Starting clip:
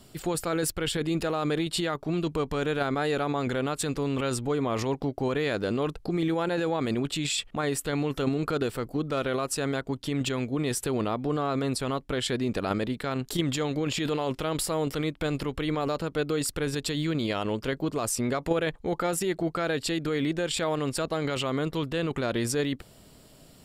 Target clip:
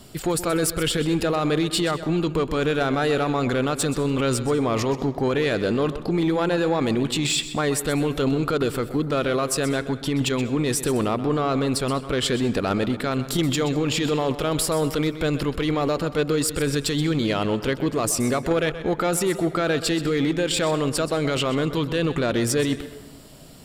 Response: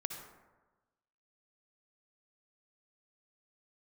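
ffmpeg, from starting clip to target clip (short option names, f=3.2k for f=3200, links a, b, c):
-filter_complex "[0:a]asoftclip=type=tanh:threshold=-21dB,asplit=2[a][b];[1:a]atrim=start_sample=2205,adelay=127[c];[b][c]afir=irnorm=-1:irlink=0,volume=-12dB[d];[a][d]amix=inputs=2:normalize=0,volume=7dB"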